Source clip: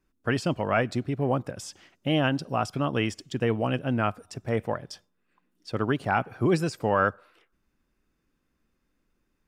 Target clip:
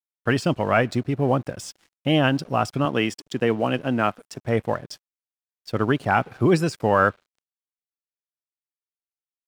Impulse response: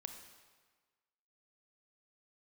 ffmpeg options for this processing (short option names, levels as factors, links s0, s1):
-filter_complex "[0:a]asettb=1/sr,asplit=3[s0][s1][s2];[s0]atrim=end=2.854[s3];[s1]atrim=start=2.85:end=4.45,asetpts=PTS-STARTPTS,afade=t=in:d=0.004:c=qsin,afade=t=out:st=1.596:d=0.004:c=qsin,highpass=160[s4];[s2]atrim=start=4.446[s5];[s3][s4]acrossfade=d=0.004:c1=hsin:c2=qsin[s6];[s6][s5]acrossfade=d=0.004:c1=qsin:c2=hsin,aeval=exprs='sgn(val(0))*max(abs(val(0))-0.00266,0)':c=same,volume=1.78"